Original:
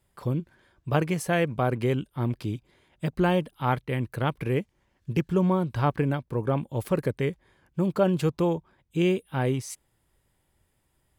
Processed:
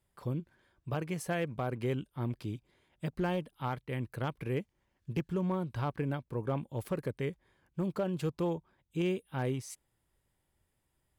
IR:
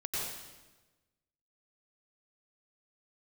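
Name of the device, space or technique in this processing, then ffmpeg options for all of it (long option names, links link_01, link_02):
limiter into clipper: -af "alimiter=limit=-15.5dB:level=0:latency=1:release=261,asoftclip=type=hard:threshold=-17.5dB,volume=-7.5dB"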